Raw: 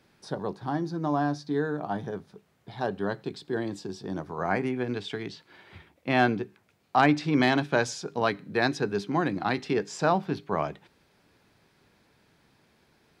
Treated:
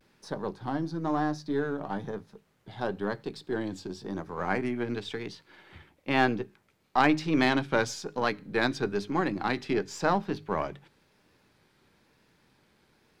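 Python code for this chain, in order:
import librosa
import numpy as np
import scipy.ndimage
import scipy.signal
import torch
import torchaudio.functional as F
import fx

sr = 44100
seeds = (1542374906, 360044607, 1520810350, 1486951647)

y = np.where(x < 0.0, 10.0 ** (-3.0 / 20.0) * x, x)
y = fx.hum_notches(y, sr, base_hz=50, count=3)
y = fx.vibrato(y, sr, rate_hz=1.0, depth_cents=79.0)
y = fx.notch(y, sr, hz=690.0, q=12.0)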